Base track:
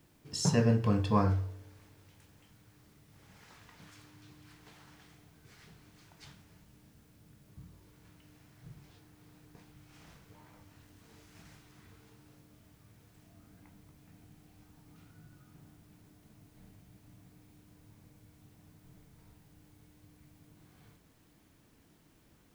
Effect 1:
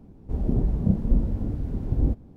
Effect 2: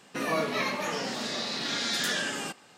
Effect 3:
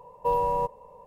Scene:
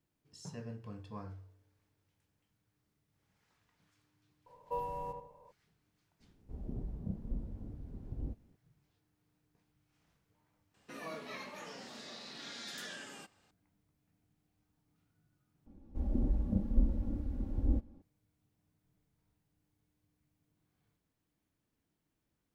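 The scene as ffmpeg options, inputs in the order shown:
-filter_complex "[1:a]asplit=2[s0][s1];[0:a]volume=0.112[s2];[3:a]asplit=2[s3][s4];[s4]adelay=78,lowpass=f=2500:p=1,volume=0.531,asplit=2[s5][s6];[s6]adelay=78,lowpass=f=2500:p=1,volume=0.37,asplit=2[s7][s8];[s8]adelay=78,lowpass=f=2500:p=1,volume=0.37,asplit=2[s9][s10];[s10]adelay=78,lowpass=f=2500:p=1,volume=0.37[s11];[s3][s5][s7][s9][s11]amix=inputs=5:normalize=0[s12];[s1]aecho=1:1:3.6:0.73[s13];[s2]asplit=2[s14][s15];[s14]atrim=end=15.664[s16];[s13]atrim=end=2.36,asetpts=PTS-STARTPTS,volume=0.282[s17];[s15]atrim=start=18.016[s18];[s12]atrim=end=1.06,asetpts=PTS-STARTPTS,volume=0.251,afade=t=in:d=0.004:c=hsin,afade=t=out:st=1.056:d=0.004:c=hsin,adelay=4460[s19];[s0]atrim=end=2.36,asetpts=PTS-STARTPTS,volume=0.126,afade=t=in:d=0.004:c=hsin,afade=t=out:st=2.356:d=0.004:c=hsin,adelay=6200[s20];[2:a]atrim=end=2.77,asetpts=PTS-STARTPTS,volume=0.158,afade=t=in:d=0.004:c=hsin,afade=t=out:st=2.766:d=0.004:c=hsin,adelay=473634S[s21];[s16][s17]acrossfade=d=0.004:c1=hsin:c2=hsin[s22];[s22][s18]acrossfade=d=0.004:c1=hsin:c2=hsin[s23];[s23][s19][s20][s21]amix=inputs=4:normalize=0"

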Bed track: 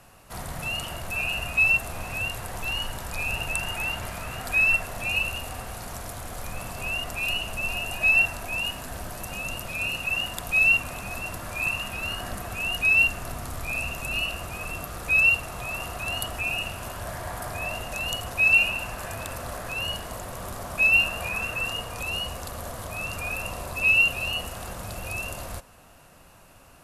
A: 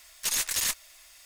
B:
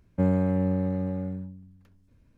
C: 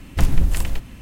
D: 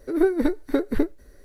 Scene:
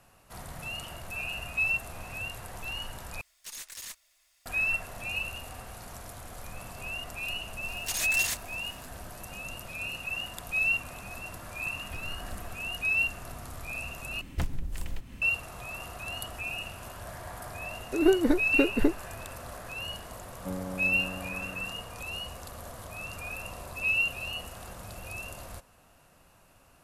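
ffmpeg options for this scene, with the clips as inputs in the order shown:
-filter_complex "[1:a]asplit=2[s0][s1];[3:a]asplit=2[s2][s3];[0:a]volume=0.422[s4];[s2]acompressor=threshold=0.0631:ratio=6:attack=3.2:release=140:knee=1:detection=peak[s5];[s3]acompressor=threshold=0.0631:ratio=6:attack=89:release=306:knee=1:detection=rms[s6];[2:a]equalizer=f=85:t=o:w=2.2:g=-8[s7];[s4]asplit=3[s8][s9][s10];[s8]atrim=end=3.214[s11];[s0]atrim=end=1.25,asetpts=PTS-STARTPTS,volume=0.188[s12];[s9]atrim=start=4.456:end=14.214[s13];[s6]atrim=end=1.01,asetpts=PTS-STARTPTS,volume=0.531[s14];[s10]atrim=start=15.216[s15];[s1]atrim=end=1.25,asetpts=PTS-STARTPTS,volume=0.596,afade=t=in:d=0.004:c=hsin,afade=t=out:st=1.246:d=0.004:c=hsin,adelay=7630[s16];[s5]atrim=end=1.01,asetpts=PTS-STARTPTS,volume=0.2,afade=t=in:d=0.004:c=hsin,afade=t=out:st=1.006:d=0.004:c=hsin,adelay=11740[s17];[4:a]atrim=end=1.44,asetpts=PTS-STARTPTS,volume=0.794,afade=t=in:d=0.004:c=hsin,afade=t=out:st=1.436:d=0.004:c=hsin,adelay=17850[s18];[s7]atrim=end=2.37,asetpts=PTS-STARTPTS,volume=0.316,afade=t=in:d=0.004:c=hsin,afade=t=out:st=2.366:d=0.004:c=hsin,adelay=20270[s19];[s11][s12]acrossfade=d=0.004:c1=hsin:c2=hsin[s20];[s20][s13]acrossfade=d=0.004:c1=hsin:c2=hsin[s21];[s21][s14]acrossfade=d=0.004:c1=hsin:c2=hsin[s22];[s22][s15]acrossfade=d=0.004:c1=hsin:c2=hsin[s23];[s23][s16][s17][s18][s19]amix=inputs=5:normalize=0"

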